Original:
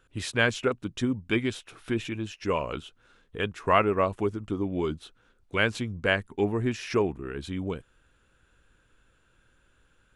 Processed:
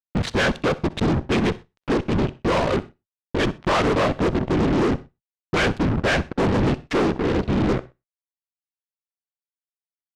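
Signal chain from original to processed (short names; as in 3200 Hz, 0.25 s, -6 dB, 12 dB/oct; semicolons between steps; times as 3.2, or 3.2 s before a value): Wiener smoothing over 25 samples; high shelf 7600 Hz -7.5 dB; in parallel at +1.5 dB: compressor, threshold -36 dBFS, peak gain reduction 18.5 dB; on the sum: whisperiser; fuzz box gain 39 dB, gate -39 dBFS; air absorption 90 m; feedback echo 63 ms, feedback 25%, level -20 dB; on a send at -23 dB: reverb, pre-delay 42 ms; on the sum: gain -4 dB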